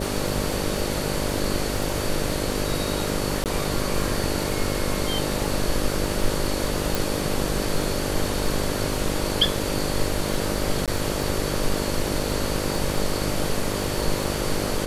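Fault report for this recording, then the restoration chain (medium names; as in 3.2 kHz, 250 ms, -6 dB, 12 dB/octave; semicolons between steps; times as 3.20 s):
buzz 50 Hz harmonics 12 -29 dBFS
crackle 47 per s -30 dBFS
3.44–3.46 s: dropout 18 ms
6.95 s: pop
10.86–10.88 s: dropout 17 ms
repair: de-click; de-hum 50 Hz, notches 12; interpolate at 3.44 s, 18 ms; interpolate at 10.86 s, 17 ms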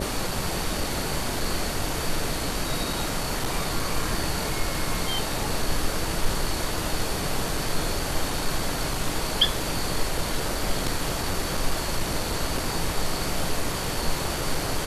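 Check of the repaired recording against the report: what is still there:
nothing left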